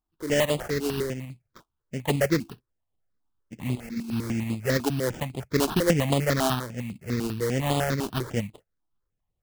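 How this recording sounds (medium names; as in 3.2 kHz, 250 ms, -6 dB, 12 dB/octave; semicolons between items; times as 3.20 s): aliases and images of a low sample rate 2.4 kHz, jitter 20%; tremolo saw up 8.8 Hz, depth 35%; notches that jump at a steady rate 10 Hz 520–5700 Hz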